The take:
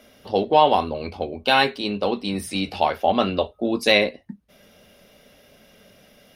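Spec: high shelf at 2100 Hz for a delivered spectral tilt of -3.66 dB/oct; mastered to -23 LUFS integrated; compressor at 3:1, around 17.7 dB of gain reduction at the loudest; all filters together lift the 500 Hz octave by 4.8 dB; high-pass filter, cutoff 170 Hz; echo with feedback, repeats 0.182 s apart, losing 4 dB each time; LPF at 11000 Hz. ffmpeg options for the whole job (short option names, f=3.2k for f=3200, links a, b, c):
-af "highpass=170,lowpass=11k,equalizer=f=500:t=o:g=6.5,highshelf=f=2.1k:g=-9,acompressor=threshold=-35dB:ratio=3,aecho=1:1:182|364|546|728|910|1092|1274|1456|1638:0.631|0.398|0.25|0.158|0.0994|0.0626|0.0394|0.0249|0.0157,volume=10.5dB"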